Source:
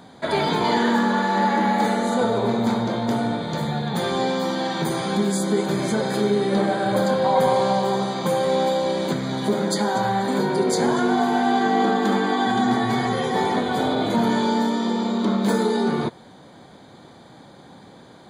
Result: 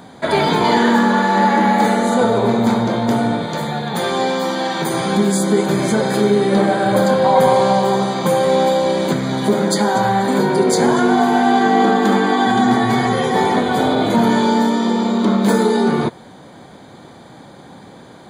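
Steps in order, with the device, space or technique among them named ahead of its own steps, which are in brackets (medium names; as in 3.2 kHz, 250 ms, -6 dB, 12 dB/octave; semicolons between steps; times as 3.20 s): exciter from parts (in parallel at -11 dB: high-pass 2.5 kHz 12 dB/octave + saturation -31 dBFS, distortion -13 dB + high-pass 2.9 kHz 24 dB/octave); 3.46–4.94 s: on the sum: bass shelf 210 Hz -9 dB; trim +6 dB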